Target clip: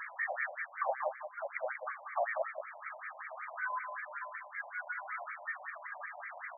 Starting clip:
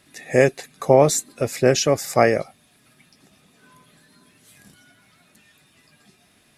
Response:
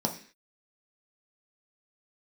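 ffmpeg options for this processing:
-filter_complex "[0:a]highpass=350,highshelf=frequency=4900:gain=10,acompressor=threshold=-31dB:ratio=6,alimiter=level_in=2dB:limit=-24dB:level=0:latency=1:release=228,volume=-2dB,acompressor=mode=upward:threshold=-39dB:ratio=2.5,asplit=2[link_01][link_02];[link_02]highpass=frequency=720:poles=1,volume=20dB,asoftclip=type=tanh:threshold=-26dB[link_03];[link_01][link_03]amix=inputs=2:normalize=0,lowpass=frequency=2800:poles=1,volume=-6dB,asplit=2[link_04][link_05];[link_05]aecho=0:1:187:0.398[link_06];[link_04][link_06]amix=inputs=2:normalize=0,afftfilt=real='re*between(b*sr/1024,720*pow(1700/720,0.5+0.5*sin(2*PI*5.3*pts/sr))/1.41,720*pow(1700/720,0.5+0.5*sin(2*PI*5.3*pts/sr))*1.41)':imag='im*between(b*sr/1024,720*pow(1700/720,0.5+0.5*sin(2*PI*5.3*pts/sr))/1.41,720*pow(1700/720,0.5+0.5*sin(2*PI*5.3*pts/sr))*1.41)':win_size=1024:overlap=0.75,volume=5dB"

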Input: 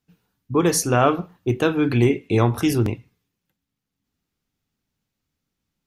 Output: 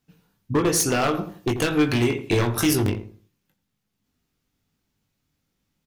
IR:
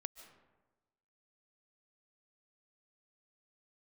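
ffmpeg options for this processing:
-filter_complex "[0:a]asettb=1/sr,asplit=3[link_01][link_02][link_03];[link_01]atrim=end=0.804[link_04];[link_02]atrim=start=0.8:end=2.9,asetpts=PTS-STARTPTS,afade=type=in:duration=0.004:curve=qsin,afade=type=out:start_time=2.096:duration=0.004:curve=qsin,highshelf=frequency=2500:gain=9.5[link_05];[link_03]atrim=start=2.896[link_06];[link_04][link_05]acrossfade=duration=0.004:curve1=hsin:curve2=qsin[link_07];[link_07][link_06]acrossfade=duration=0.004:curve1=qsin:curve2=hsin,acompressor=threshold=-20dB:ratio=8,aeval=exprs='0.126*(abs(mod(val(0)/0.126+3,4)-2)-1)':channel_layout=same,asplit=2[link_08][link_09];[link_09]adelay=20,volume=-6dB[link_10];[link_08][link_10]amix=inputs=2:normalize=0,asplit=2[link_11][link_12];[link_12]adelay=84,lowpass=frequency=890:poles=1,volume=-9dB,asplit=2[link_13][link_14];[link_14]adelay=84,lowpass=frequency=890:poles=1,volume=0.33,asplit=2[link_15][link_16];[link_16]adelay=84,lowpass=frequency=890:poles=1,volume=0.33,asplit=2[link_17][link_18];[link_18]adelay=84,lowpass=frequency=890:poles=1,volume=0.33[link_19];[link_11][link_13][link_15][link_17][link_19]amix=inputs=5:normalize=0,volume=3dB"

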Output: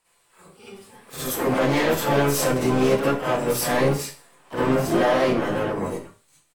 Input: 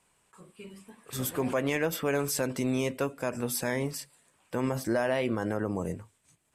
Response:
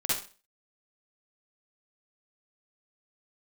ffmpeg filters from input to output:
-filter_complex "[0:a]equalizer=frequency=110:width=0.41:gain=-9.5,acrossover=split=1700[link_01][link_02];[link_01]dynaudnorm=framelen=230:gausssize=13:maxgain=9.5dB[link_03];[link_03][link_02]amix=inputs=2:normalize=0,alimiter=limit=-14dB:level=0:latency=1:release=13,asplit=4[link_04][link_05][link_06][link_07];[link_05]asetrate=22050,aresample=44100,atempo=2,volume=-9dB[link_08];[link_06]asetrate=52444,aresample=44100,atempo=0.840896,volume=-8dB[link_09];[link_07]asetrate=88200,aresample=44100,atempo=0.5,volume=-10dB[link_10];[link_04][link_08][link_09][link_10]amix=inputs=4:normalize=0,asoftclip=type=hard:threshold=-20.5dB[link_11];[1:a]atrim=start_sample=2205[link_12];[link_11][link_12]afir=irnorm=-1:irlink=0,volume=-2.5dB"

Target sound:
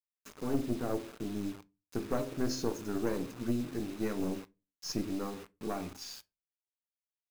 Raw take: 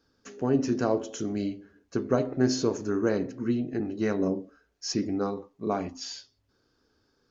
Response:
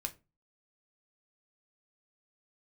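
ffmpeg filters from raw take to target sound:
-filter_complex "[0:a]asettb=1/sr,asplit=3[link_01][link_02][link_03];[link_01]atrim=end=0.594[link_04];[link_02]atrim=start=0.59:end=1.55,asetpts=PTS-STARTPTS,afade=type=in:duration=0.004:curve=qsin,afade=type=out:start_time=0.956:duration=0.004:curve=qsin,lowpass=1100[link_05];[link_03]atrim=start=1.546[link_06];[link_04][link_05]acrossfade=duration=0.004:curve1=hsin:curve2=qsin[link_07];[link_07][link_06]acrossfade=duration=0.004:curve1=qsin:curve2=hsin,bandreject=frequency=402:width_type=h:width=4,bandreject=frequency=804:width_type=h:width=4,bandreject=frequency=1206:width_type=h:width=4,bandreject=frequency=1608:width_type=h:width=4,bandreject=frequency=2010:width_type=h:width=4,bandreject=frequency=2412:width_type=h:width=4,bandreject=frequency=2814:width_type=h:width=4,acrusher=bits=6:mix=0:aa=0.000001,aeval=exprs='(tanh(7.94*val(0)+0.7)-tanh(0.7))/7.94':channel_layout=same,asplit=2[link_08][link_09];[1:a]atrim=start_sample=2205[link_10];[link_09][link_10]afir=irnorm=-1:irlink=0,volume=-5.5dB[link_11];[link_08][link_11]amix=inputs=2:normalize=0,volume=-6dB"

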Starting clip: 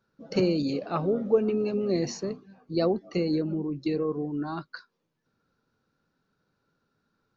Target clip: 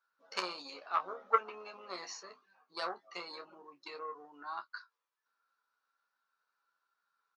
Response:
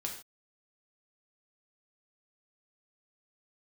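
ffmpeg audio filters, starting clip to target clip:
-filter_complex "[0:a]aeval=exprs='0.282*(cos(1*acos(clip(val(0)/0.282,-1,1)))-cos(1*PI/2))+0.0794*(cos(3*acos(clip(val(0)/0.282,-1,1)))-cos(3*PI/2))+0.0112*(cos(5*acos(clip(val(0)/0.282,-1,1)))-cos(5*PI/2))+0.00178*(cos(7*acos(clip(val(0)/0.282,-1,1)))-cos(7*PI/2))':channel_layout=same,highpass=frequency=1100:width_type=q:width=2.1,asplit=2[link_01][link_02];[link_02]aecho=0:1:11|28:0.501|0.316[link_03];[link_01][link_03]amix=inputs=2:normalize=0,volume=1dB"

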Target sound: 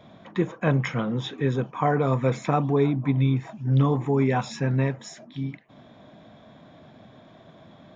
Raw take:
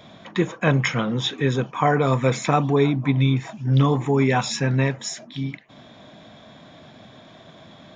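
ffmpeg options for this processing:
ffmpeg -i in.wav -af "highshelf=frequency=2100:gain=-10.5,volume=-2.5dB" out.wav

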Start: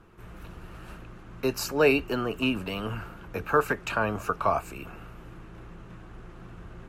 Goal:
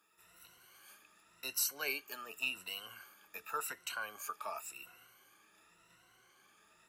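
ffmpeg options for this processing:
ffmpeg -i in.wav -af "afftfilt=real='re*pow(10,14/40*sin(2*PI*(2*log(max(b,1)*sr/1024/100)/log(2)-(0.9)*(pts-256)/sr)))':imag='im*pow(10,14/40*sin(2*PI*(2*log(max(b,1)*sr/1024/100)/log(2)-(0.9)*(pts-256)/sr)))':win_size=1024:overlap=0.75,aderivative,aeval=exprs='0.119*(cos(1*acos(clip(val(0)/0.119,-1,1)))-cos(1*PI/2))+0.00422*(cos(2*acos(clip(val(0)/0.119,-1,1)))-cos(2*PI/2))':channel_layout=same,volume=-1.5dB" out.wav

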